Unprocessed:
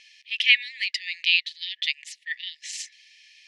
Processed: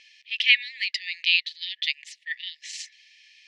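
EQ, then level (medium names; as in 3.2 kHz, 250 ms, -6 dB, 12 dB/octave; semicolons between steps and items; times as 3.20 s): distance through air 52 m; dynamic bell 4.4 kHz, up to +3 dB, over -42 dBFS, Q 3.1; 0.0 dB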